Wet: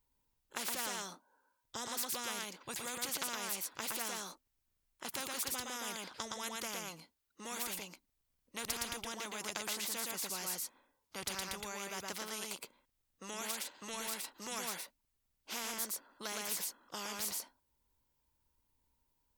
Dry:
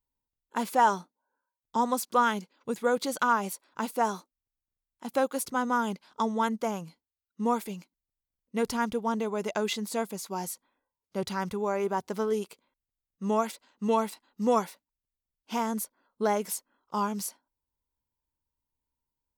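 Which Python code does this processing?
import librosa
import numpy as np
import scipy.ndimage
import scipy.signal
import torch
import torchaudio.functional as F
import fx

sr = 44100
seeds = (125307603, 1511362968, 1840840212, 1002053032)

y = x + 10.0 ** (-4.5 / 20.0) * np.pad(x, (int(116 * sr / 1000.0), 0))[:len(x)]
y = fx.spectral_comp(y, sr, ratio=4.0)
y = y * 10.0 ** (-6.5 / 20.0)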